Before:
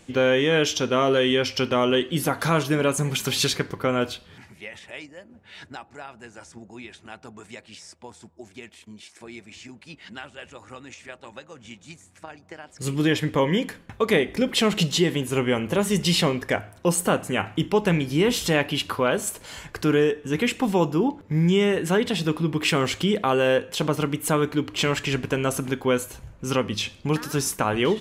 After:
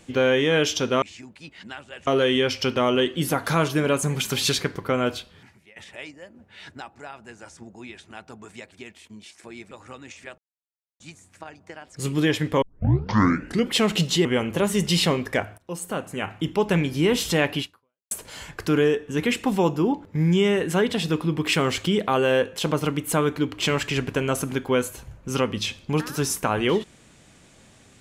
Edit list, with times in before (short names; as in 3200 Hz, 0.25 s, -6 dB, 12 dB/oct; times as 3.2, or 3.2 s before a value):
4.13–4.71 fade out, to -18.5 dB
7.67–8.49 cut
9.48–10.53 move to 1.02
11.2–11.82 mute
13.44 tape start 1.09 s
15.07–15.41 cut
16.74–17.94 fade in, from -15.5 dB
18.76–19.27 fade out exponential